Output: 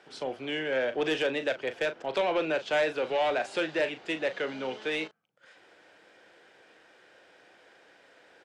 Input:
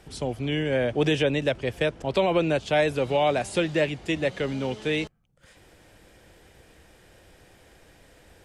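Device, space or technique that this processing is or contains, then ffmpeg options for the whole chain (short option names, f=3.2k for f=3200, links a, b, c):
intercom: -filter_complex "[0:a]highpass=390,lowpass=4.6k,equalizer=f=1.5k:t=o:w=0.26:g=6,asoftclip=type=tanh:threshold=-19dB,asplit=2[a][b];[b]adelay=38,volume=-11dB[c];[a][c]amix=inputs=2:normalize=0,volume=-1.5dB"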